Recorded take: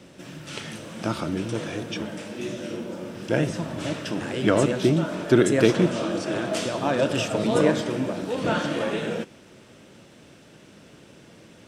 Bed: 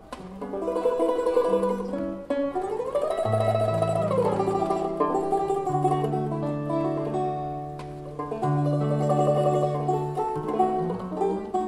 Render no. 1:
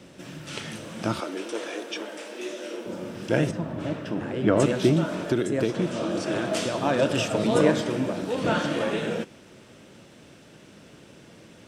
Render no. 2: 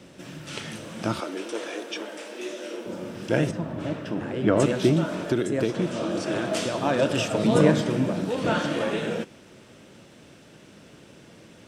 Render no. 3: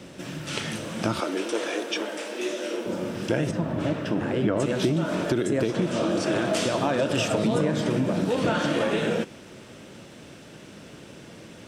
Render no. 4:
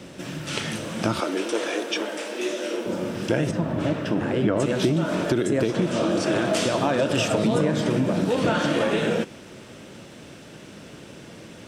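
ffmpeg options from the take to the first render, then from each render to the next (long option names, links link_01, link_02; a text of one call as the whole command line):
ffmpeg -i in.wav -filter_complex "[0:a]asettb=1/sr,asplit=3[link_01][link_02][link_03];[link_01]atrim=end=1.204[link_04];[link_02]atrim=start=1.2:end=2.86,asetpts=PTS-STARTPTS,afade=type=in:duration=0.004:curve=qsin,afade=type=out:start_time=1.656:duration=0.004:curve=qsin,highpass=frequency=330:width=0.5412,highpass=frequency=330:width=1.3066[link_05];[link_03]atrim=start=2.856[link_06];[link_04][link_05]acrossfade=duration=0.004:curve1=hsin:curve2=qsin[link_07];[link_07][link_06]acrossfade=duration=0.004:curve1=qsin:curve2=hsin,asettb=1/sr,asplit=3[link_08][link_09][link_10];[link_08]atrim=end=3.514[link_11];[link_09]atrim=start=3.51:end=4.6,asetpts=PTS-STARTPTS,afade=type=in:duration=0.004:curve=qsin,afade=type=out:start_time=1.086:duration=0.004:curve=qsin,equalizer=frequency=8100:width=0.31:gain=-14.5[link_12];[link_10]atrim=start=4.596[link_13];[link_11][link_12]acrossfade=duration=0.004:curve1=hsin:curve2=qsin[link_14];[link_14][link_13]acrossfade=duration=0.004:curve1=qsin:curve2=hsin,asettb=1/sr,asplit=3[link_15][link_16][link_17];[link_15]atrim=end=5.214[link_18];[link_16]atrim=start=5.21:end=6.17,asetpts=PTS-STARTPTS,afade=type=in:duration=0.004:curve=qsin,afade=type=out:start_time=0.956:duration=0.004:curve=qsin,acrossover=split=1100|2600[link_19][link_20][link_21];[link_19]acompressor=threshold=-22dB:ratio=4[link_22];[link_20]acompressor=threshold=-43dB:ratio=4[link_23];[link_21]acompressor=threshold=-42dB:ratio=4[link_24];[link_22][link_23][link_24]amix=inputs=3:normalize=0[link_25];[link_17]atrim=start=6.166[link_26];[link_18][link_25]acrossfade=duration=0.004:curve1=hsin:curve2=qsin[link_27];[link_27][link_26]acrossfade=duration=0.004:curve1=qsin:curve2=hsin" out.wav
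ffmpeg -i in.wav -filter_complex "[0:a]asettb=1/sr,asplit=3[link_01][link_02][link_03];[link_01]atrim=end=7.444[link_04];[link_02]atrim=start=7.44:end=8.31,asetpts=PTS-STARTPTS,afade=type=in:duration=0.004:curve=qsin,afade=type=out:start_time=0.866:duration=0.004:curve=qsin,equalizer=frequency=160:width=1.5:gain=7.5[link_05];[link_03]atrim=start=8.306[link_06];[link_04][link_05]acrossfade=duration=0.004:curve1=hsin:curve2=qsin[link_07];[link_07][link_06]acrossfade=duration=0.004:curve1=qsin:curve2=hsin" out.wav
ffmpeg -i in.wav -filter_complex "[0:a]asplit=2[link_01][link_02];[link_02]alimiter=limit=-17dB:level=0:latency=1,volume=-2.5dB[link_03];[link_01][link_03]amix=inputs=2:normalize=0,acompressor=threshold=-20dB:ratio=6" out.wav
ffmpeg -i in.wav -af "volume=2dB" out.wav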